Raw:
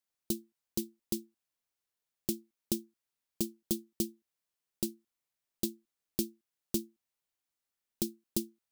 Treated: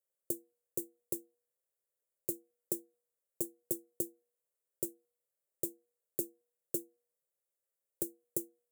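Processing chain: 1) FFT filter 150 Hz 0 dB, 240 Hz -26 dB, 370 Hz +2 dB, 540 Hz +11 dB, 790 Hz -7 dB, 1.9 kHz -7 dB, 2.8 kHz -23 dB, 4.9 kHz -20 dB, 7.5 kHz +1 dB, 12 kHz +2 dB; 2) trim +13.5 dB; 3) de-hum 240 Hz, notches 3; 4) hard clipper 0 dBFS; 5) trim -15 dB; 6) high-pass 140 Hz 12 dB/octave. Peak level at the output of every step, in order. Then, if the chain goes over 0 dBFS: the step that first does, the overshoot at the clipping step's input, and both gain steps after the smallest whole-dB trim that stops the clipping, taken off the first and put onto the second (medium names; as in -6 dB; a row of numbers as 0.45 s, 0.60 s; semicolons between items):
-15.0 dBFS, -1.5 dBFS, -1.5 dBFS, -1.5 dBFS, -16.5 dBFS, -15.5 dBFS; nothing clips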